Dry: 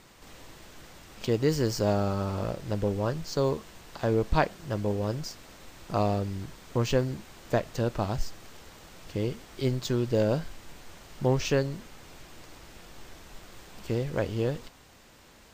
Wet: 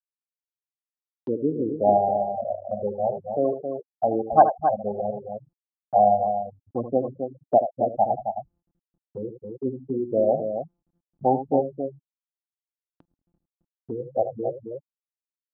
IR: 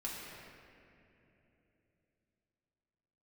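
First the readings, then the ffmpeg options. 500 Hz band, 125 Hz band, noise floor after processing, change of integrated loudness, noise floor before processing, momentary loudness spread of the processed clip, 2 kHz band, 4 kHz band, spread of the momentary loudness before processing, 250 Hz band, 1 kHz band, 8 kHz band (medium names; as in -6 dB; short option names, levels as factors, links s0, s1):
+5.5 dB, -9.5 dB, under -85 dBFS, +5.0 dB, -55 dBFS, 17 LU, under -10 dB, under -40 dB, 23 LU, +1.0 dB, +13.0 dB, under -35 dB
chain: -filter_complex "[0:a]equalizer=f=740:t=o:w=0.7:g=13,asplit=2[s0][s1];[1:a]atrim=start_sample=2205[s2];[s1][s2]afir=irnorm=-1:irlink=0,volume=0.251[s3];[s0][s3]amix=inputs=2:normalize=0,afftfilt=real='re*gte(hypot(re,im),0.282)':imag='im*gte(hypot(re,im),0.282)':win_size=1024:overlap=0.75,asuperstop=centerf=950:order=8:qfactor=5.8,aecho=1:1:77|268:0.299|0.422,acompressor=mode=upward:threshold=0.0501:ratio=2.5,highpass=220,equalizer=f=280:t=q:w=4:g=6,equalizer=f=450:t=q:w=4:g=-5,equalizer=f=900:t=q:w=4:g=6,equalizer=f=2100:t=q:w=4:g=-8,lowpass=f=4500:w=0.5412,lowpass=f=4500:w=1.3066"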